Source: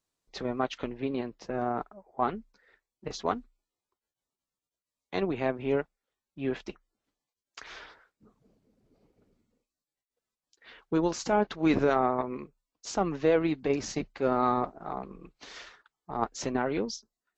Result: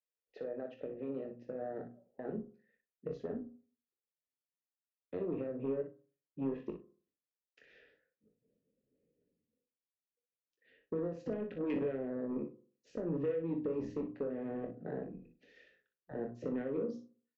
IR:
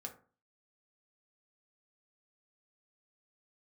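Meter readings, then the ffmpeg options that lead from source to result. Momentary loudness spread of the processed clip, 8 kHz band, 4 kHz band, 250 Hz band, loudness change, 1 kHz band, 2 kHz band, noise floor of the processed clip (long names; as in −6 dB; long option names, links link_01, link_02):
11 LU, can't be measured, below −20 dB, −7.5 dB, −9.5 dB, −22.0 dB, −17.5 dB, below −85 dBFS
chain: -filter_complex "[0:a]afwtdn=0.0178,bandreject=frequency=60:width_type=h:width=6,bandreject=frequency=120:width_type=h:width=6,bandreject=frequency=180:width_type=h:width=6,bandreject=frequency=240:width_type=h:width=6,bandreject=frequency=300:width_type=h:width=6,acrossover=split=91|690[link_01][link_02][link_03];[link_01]acompressor=threshold=-53dB:ratio=4[link_04];[link_02]acompressor=threshold=-30dB:ratio=4[link_05];[link_03]acompressor=threshold=-38dB:ratio=4[link_06];[link_04][link_05][link_06]amix=inputs=3:normalize=0,equalizer=frequency=270:width_type=o:width=0.35:gain=4.5,alimiter=level_in=1.5dB:limit=-24dB:level=0:latency=1:release=46,volume=-1.5dB,asplit=3[link_07][link_08][link_09];[link_07]bandpass=frequency=530:width_type=q:width=8,volume=0dB[link_10];[link_08]bandpass=frequency=1840:width_type=q:width=8,volume=-6dB[link_11];[link_09]bandpass=frequency=2480:width_type=q:width=8,volume=-9dB[link_12];[link_10][link_11][link_12]amix=inputs=3:normalize=0,acompressor=threshold=-45dB:ratio=6,asubboost=boost=10.5:cutoff=210,asoftclip=type=tanh:threshold=-38.5dB,asplit=2[link_13][link_14];[link_14]adelay=42,volume=-12dB[link_15];[link_13][link_15]amix=inputs=2:normalize=0,aecho=1:1:23|59:0.422|0.355,asplit=2[link_16][link_17];[1:a]atrim=start_sample=2205,asetrate=39249,aresample=44100[link_18];[link_17][link_18]afir=irnorm=-1:irlink=0,volume=-1dB[link_19];[link_16][link_19]amix=inputs=2:normalize=0,volume=6.5dB"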